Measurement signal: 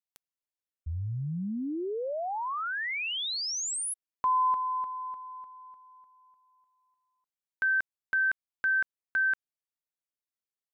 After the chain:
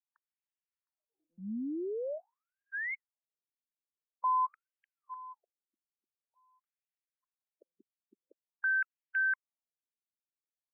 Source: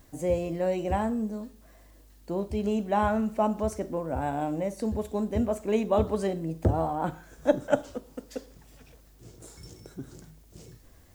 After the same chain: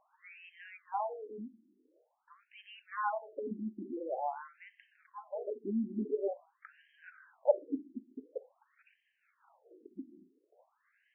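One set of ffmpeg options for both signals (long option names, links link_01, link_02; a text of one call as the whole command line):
ffmpeg -i in.wav -af "afftfilt=real='re*between(b*sr/1024,250*pow(2300/250,0.5+0.5*sin(2*PI*0.47*pts/sr))/1.41,250*pow(2300/250,0.5+0.5*sin(2*PI*0.47*pts/sr))*1.41)':imag='im*between(b*sr/1024,250*pow(2300/250,0.5+0.5*sin(2*PI*0.47*pts/sr))/1.41,250*pow(2300/250,0.5+0.5*sin(2*PI*0.47*pts/sr))*1.41)':win_size=1024:overlap=0.75,volume=-3dB" out.wav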